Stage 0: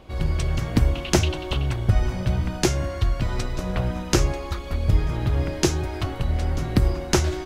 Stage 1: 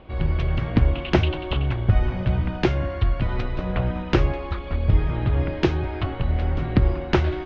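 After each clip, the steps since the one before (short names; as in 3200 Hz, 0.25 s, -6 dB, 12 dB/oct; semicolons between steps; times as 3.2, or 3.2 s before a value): LPF 3300 Hz 24 dB/oct; gain +1 dB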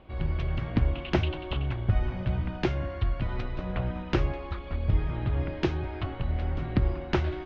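bell 460 Hz -3 dB 0.21 oct; gain -6.5 dB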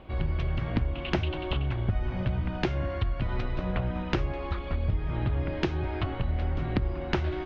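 compressor 4:1, threshold -29 dBFS, peak gain reduction 10 dB; gain +4.5 dB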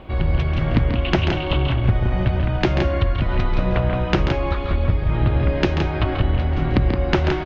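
loudspeakers at several distances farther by 47 m -8 dB, 58 m -6 dB; gain +8.5 dB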